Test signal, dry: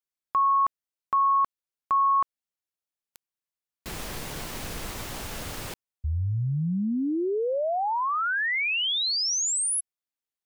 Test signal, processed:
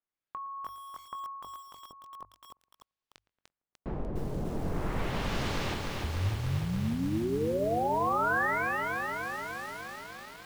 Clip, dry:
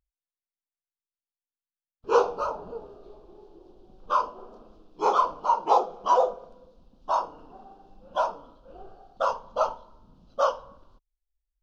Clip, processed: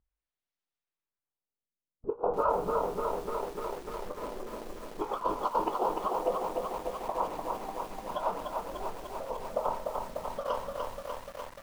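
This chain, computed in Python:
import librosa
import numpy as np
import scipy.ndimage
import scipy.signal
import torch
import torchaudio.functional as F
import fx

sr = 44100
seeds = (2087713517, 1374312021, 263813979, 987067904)

y = fx.low_shelf(x, sr, hz=370.0, db=2.5)
y = fx.hum_notches(y, sr, base_hz=50, count=2)
y = fx.over_compress(y, sr, threshold_db=-28.0, ratio=-0.5)
y = fx.filter_lfo_lowpass(y, sr, shape='sine', hz=0.41, low_hz=480.0, high_hz=4600.0, q=0.85)
y = fx.doubler(y, sr, ms=22.0, db=-12.5)
y = fx.echo_filtered(y, sr, ms=114, feedback_pct=58, hz=1900.0, wet_db=-19)
y = fx.echo_crushed(y, sr, ms=297, feedback_pct=80, bits=8, wet_db=-3.5)
y = y * 10.0 ** (-2.5 / 20.0)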